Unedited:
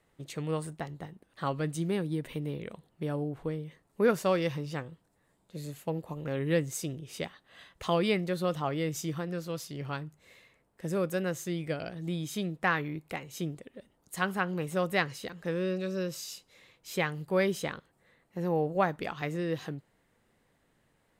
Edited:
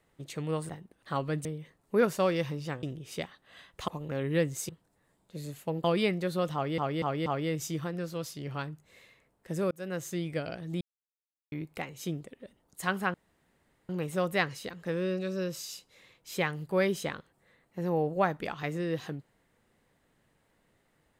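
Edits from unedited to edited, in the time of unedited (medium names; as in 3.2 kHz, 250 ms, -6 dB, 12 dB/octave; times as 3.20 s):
0.69–1.00 s: delete
1.76–3.51 s: delete
4.89–6.04 s: swap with 6.85–7.90 s
8.60 s: stutter 0.24 s, 4 plays
11.05–11.51 s: fade in equal-power
12.15–12.86 s: mute
14.48 s: insert room tone 0.75 s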